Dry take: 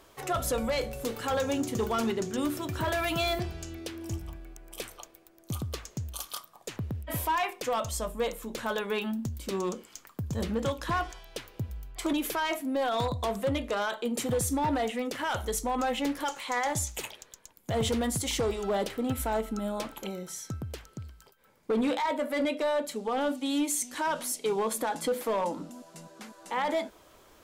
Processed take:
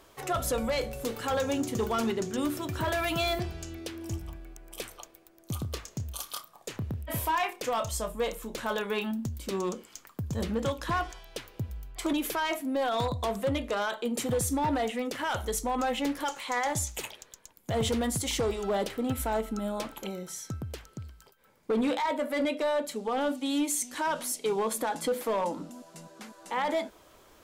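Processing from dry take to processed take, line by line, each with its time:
0:05.58–0:09.11: double-tracking delay 29 ms −11.5 dB

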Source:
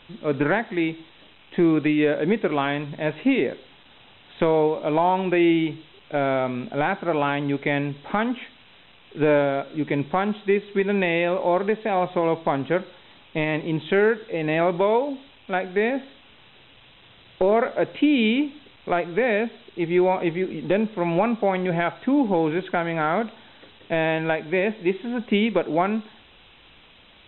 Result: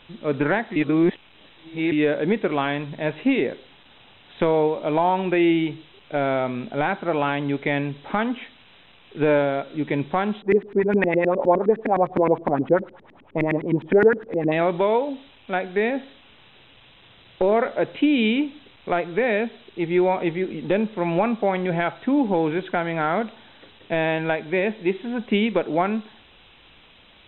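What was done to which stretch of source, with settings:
0:00.76–0:01.92: reverse
0:10.42–0:14.52: auto-filter low-pass saw up 9.7 Hz 220–2,200 Hz

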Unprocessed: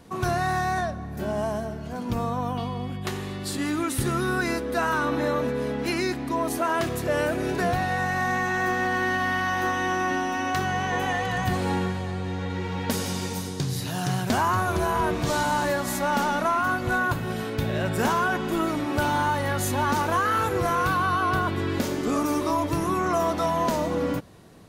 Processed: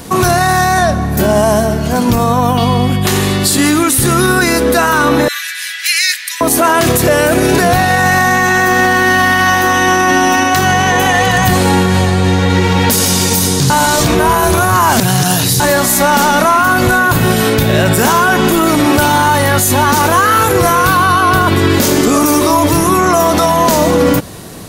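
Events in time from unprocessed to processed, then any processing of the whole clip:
0:05.28–0:06.41: elliptic high-pass filter 1,700 Hz, stop band 70 dB
0:13.70–0:15.60: reverse
whole clip: high-shelf EQ 5,200 Hz +11.5 dB; boost into a limiter +20.5 dB; level −1 dB

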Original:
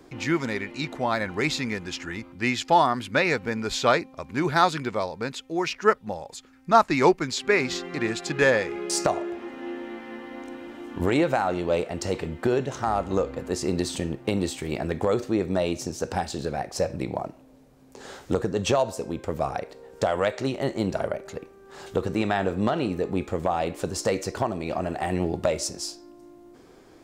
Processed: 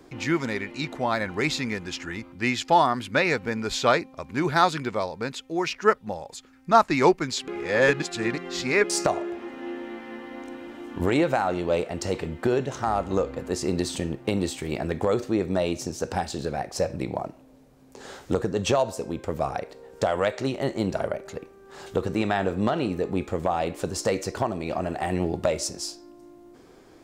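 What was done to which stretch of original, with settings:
0:07.48–0:08.84: reverse

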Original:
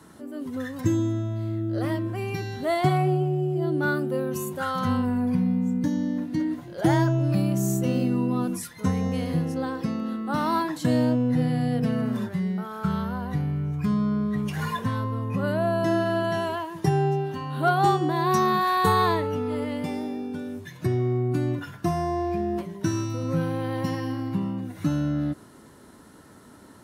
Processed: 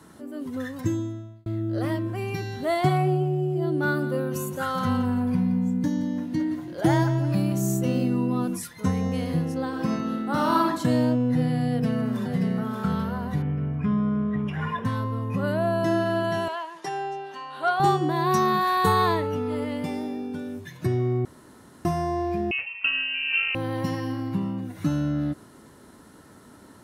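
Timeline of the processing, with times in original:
0:00.68–0:01.46: fade out
0:03.70–0:07.61: repeating echo 171 ms, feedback 39%, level −13 dB
0:09.67–0:10.66: thrown reverb, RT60 0.85 s, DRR 0 dB
0:11.67–0:12.27: delay throw 580 ms, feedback 55%, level −5 dB
0:13.42–0:14.85: Savitzky-Golay smoothing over 25 samples
0:16.48–0:17.80: band-pass filter 630–7,700 Hz
0:21.25–0:21.85: fill with room tone
0:22.51–0:23.55: voice inversion scrambler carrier 2,900 Hz

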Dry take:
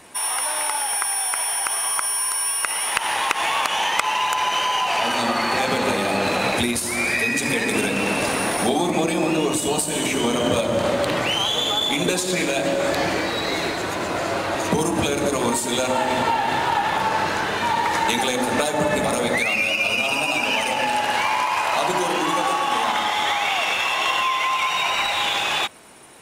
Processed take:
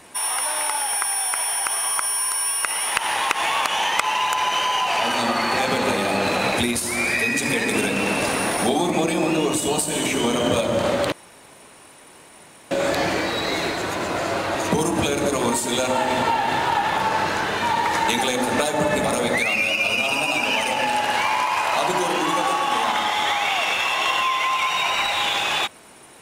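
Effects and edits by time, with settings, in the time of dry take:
0:11.12–0:12.71: fill with room tone

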